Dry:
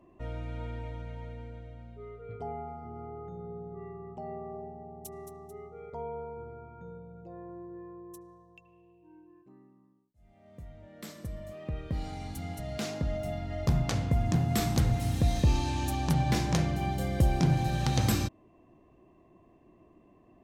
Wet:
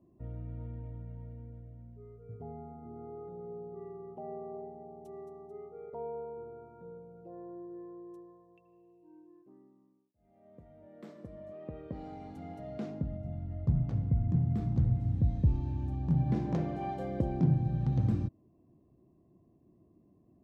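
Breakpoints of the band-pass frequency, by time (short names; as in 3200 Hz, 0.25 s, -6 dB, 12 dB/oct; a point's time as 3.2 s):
band-pass, Q 0.85
2.31 s 140 Hz
3.31 s 420 Hz
12.65 s 420 Hz
13.25 s 110 Hz
16.02 s 110 Hz
16.92 s 620 Hz
17.62 s 140 Hz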